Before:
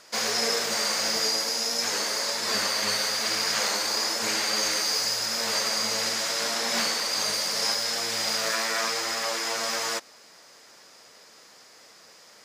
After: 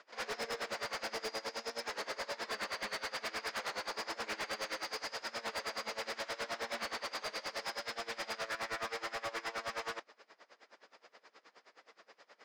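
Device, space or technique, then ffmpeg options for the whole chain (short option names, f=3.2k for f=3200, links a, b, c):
helicopter radio: -af "highpass=310,lowpass=2.7k,aeval=exprs='val(0)*pow(10,-23*(0.5-0.5*cos(2*PI*9.5*n/s))/20)':c=same,asoftclip=type=hard:threshold=-34.5dB"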